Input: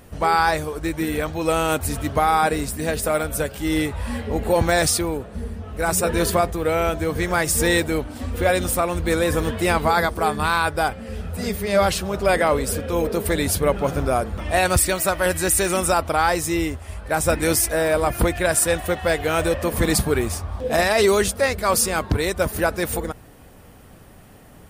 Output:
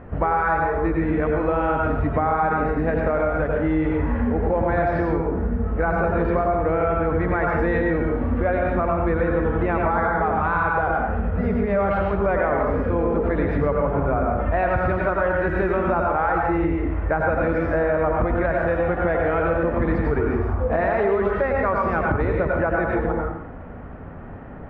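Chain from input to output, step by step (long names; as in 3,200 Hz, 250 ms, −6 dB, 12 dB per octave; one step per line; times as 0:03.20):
low-pass filter 1,800 Hz 24 dB per octave
dense smooth reverb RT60 0.71 s, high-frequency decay 0.75×, pre-delay 80 ms, DRR 0 dB
in parallel at +1 dB: brickwall limiter −12.5 dBFS, peak gain reduction 9 dB
on the sum: downward compressor 4 to 1, threshold −19 dBFS, peak gain reduction 11.5 dB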